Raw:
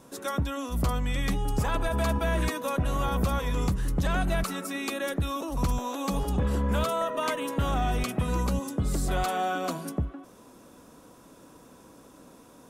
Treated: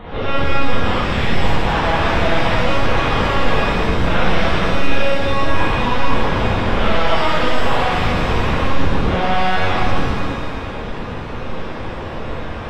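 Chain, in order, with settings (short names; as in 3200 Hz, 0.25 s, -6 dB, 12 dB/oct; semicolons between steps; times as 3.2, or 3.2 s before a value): HPF 120 Hz 12 dB/oct; high shelf 3100 Hz -7 dB; fuzz box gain 49 dB, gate -54 dBFS; analogue delay 0.226 s, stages 4096, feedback 56%, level -11 dB; LPC vocoder at 8 kHz pitch kept; shimmer reverb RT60 1.6 s, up +7 st, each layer -8 dB, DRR -8.5 dB; gain -12 dB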